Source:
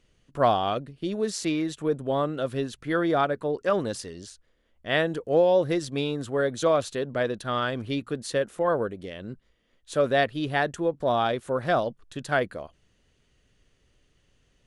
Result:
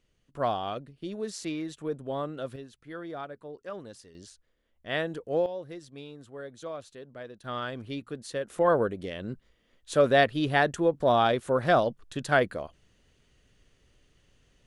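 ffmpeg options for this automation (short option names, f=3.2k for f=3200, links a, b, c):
-af "asetnsamples=n=441:p=0,asendcmd='2.56 volume volume -15dB;4.15 volume volume -6dB;5.46 volume volume -16dB;7.44 volume volume -7dB;8.5 volume volume 1.5dB',volume=-7dB"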